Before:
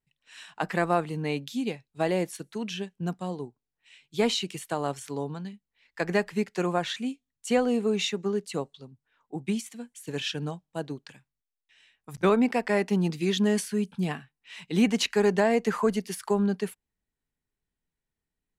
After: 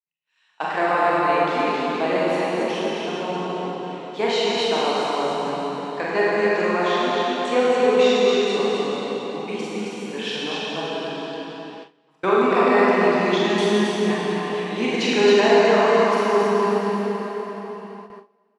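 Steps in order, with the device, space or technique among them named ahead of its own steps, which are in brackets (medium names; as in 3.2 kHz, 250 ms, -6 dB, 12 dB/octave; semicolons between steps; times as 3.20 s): station announcement (band-pass 320–4900 Hz; peaking EQ 1 kHz +6 dB 0.44 oct; loudspeakers at several distances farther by 15 m -5 dB, 92 m -3 dB; reverberation RT60 4.6 s, pre-delay 25 ms, DRR -6 dB); gate with hold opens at -28 dBFS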